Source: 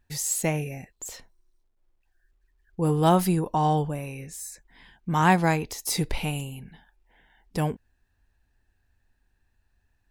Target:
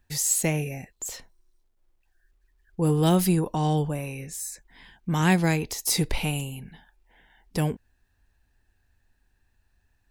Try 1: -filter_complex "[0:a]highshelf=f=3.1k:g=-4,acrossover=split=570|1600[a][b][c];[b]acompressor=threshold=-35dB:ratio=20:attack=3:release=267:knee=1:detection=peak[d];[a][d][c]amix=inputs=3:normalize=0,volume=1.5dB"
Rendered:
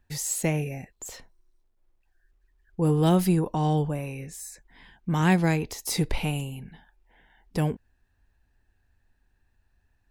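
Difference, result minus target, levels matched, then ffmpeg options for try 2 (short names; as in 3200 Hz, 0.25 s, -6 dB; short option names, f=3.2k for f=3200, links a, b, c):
8000 Hz band -5.5 dB
-filter_complex "[0:a]highshelf=f=3.1k:g=2.5,acrossover=split=570|1600[a][b][c];[b]acompressor=threshold=-35dB:ratio=20:attack=3:release=267:knee=1:detection=peak[d];[a][d][c]amix=inputs=3:normalize=0,volume=1.5dB"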